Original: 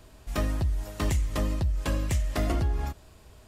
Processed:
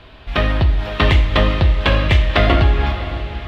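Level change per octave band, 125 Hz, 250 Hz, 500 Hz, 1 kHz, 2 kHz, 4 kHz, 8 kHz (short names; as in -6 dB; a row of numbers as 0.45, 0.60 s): +12.5 dB, +11.0 dB, +15.0 dB, +16.5 dB, +19.5 dB, +19.0 dB, n/a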